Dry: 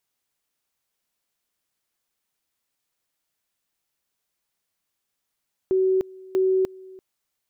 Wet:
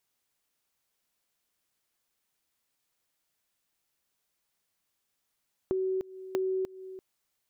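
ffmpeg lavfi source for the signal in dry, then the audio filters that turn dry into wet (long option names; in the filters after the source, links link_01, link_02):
-f lavfi -i "aevalsrc='pow(10,(-17-23*gte(mod(t,0.64),0.3))/20)*sin(2*PI*377*t)':duration=1.28:sample_rate=44100"
-af "acompressor=threshold=-30dB:ratio=5"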